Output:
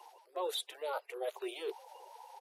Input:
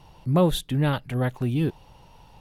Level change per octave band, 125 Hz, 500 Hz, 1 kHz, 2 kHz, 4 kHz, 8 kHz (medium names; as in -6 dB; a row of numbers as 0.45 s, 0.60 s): under -40 dB, -10.5 dB, -9.5 dB, -12.0 dB, -7.0 dB, -8.0 dB